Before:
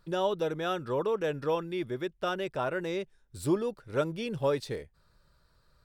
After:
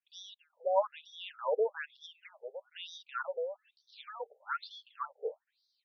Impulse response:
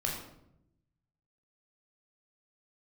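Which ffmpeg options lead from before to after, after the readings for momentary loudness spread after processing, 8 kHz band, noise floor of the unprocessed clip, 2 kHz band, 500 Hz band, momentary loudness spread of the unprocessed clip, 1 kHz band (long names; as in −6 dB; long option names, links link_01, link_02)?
19 LU, below −10 dB, −68 dBFS, −4.5 dB, −5.5 dB, 6 LU, −3.0 dB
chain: -filter_complex "[0:a]acrossover=split=180|3500[link_01][link_02][link_03];[link_01]adelay=60[link_04];[link_02]adelay=530[link_05];[link_04][link_05][link_03]amix=inputs=3:normalize=0,afftfilt=real='re*between(b*sr/1024,560*pow(4600/560,0.5+0.5*sin(2*PI*1.1*pts/sr))/1.41,560*pow(4600/560,0.5+0.5*sin(2*PI*1.1*pts/sr))*1.41)':imag='im*between(b*sr/1024,560*pow(4600/560,0.5+0.5*sin(2*PI*1.1*pts/sr))/1.41,560*pow(4600/560,0.5+0.5*sin(2*PI*1.1*pts/sr))*1.41)':win_size=1024:overlap=0.75,volume=2.5dB"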